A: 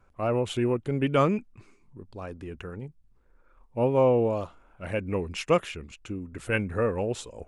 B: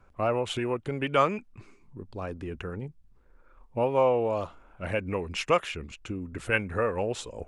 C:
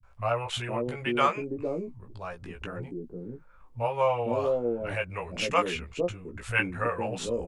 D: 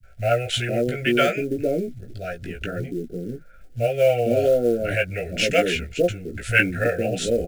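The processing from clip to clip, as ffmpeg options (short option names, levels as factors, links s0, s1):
-filter_complex "[0:a]highshelf=f=8900:g=-7.5,acrossover=split=550[s0][s1];[s0]acompressor=threshold=0.02:ratio=6[s2];[s2][s1]amix=inputs=2:normalize=0,volume=1.41"
-filter_complex "[0:a]asplit=2[s0][s1];[s1]adelay=17,volume=0.631[s2];[s0][s2]amix=inputs=2:normalize=0,acrossover=split=150|520[s3][s4][s5];[s5]adelay=30[s6];[s4]adelay=490[s7];[s3][s7][s6]amix=inputs=3:normalize=0"
-af "acrusher=bits=7:mode=log:mix=0:aa=0.000001,asuperstop=centerf=1000:order=20:qfactor=1.7,volume=2.66"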